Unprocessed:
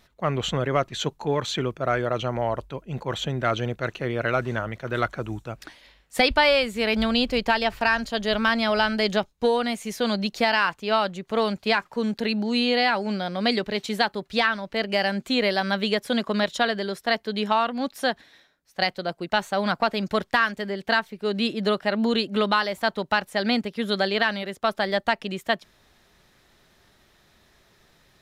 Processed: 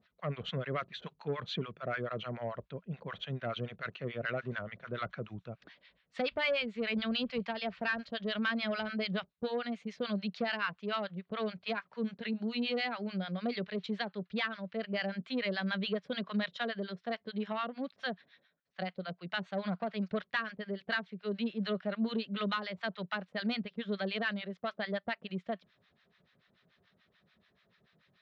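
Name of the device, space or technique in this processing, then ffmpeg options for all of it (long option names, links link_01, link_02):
guitar amplifier with harmonic tremolo: -filter_complex "[0:a]acrossover=split=840[link_01][link_02];[link_01]aeval=exprs='val(0)*(1-1/2+1/2*cos(2*PI*6.9*n/s))':channel_layout=same[link_03];[link_02]aeval=exprs='val(0)*(1-1/2-1/2*cos(2*PI*6.9*n/s))':channel_layout=same[link_04];[link_03][link_04]amix=inputs=2:normalize=0,asoftclip=type=tanh:threshold=-18dB,highpass=110,equalizer=frequency=180:width_type=q:width=4:gain=6,equalizer=frequency=320:width_type=q:width=4:gain=-8,equalizer=frequency=860:width_type=q:width=4:gain=-8,lowpass=frequency=4000:width=0.5412,lowpass=frequency=4000:width=1.3066,volume=-5dB"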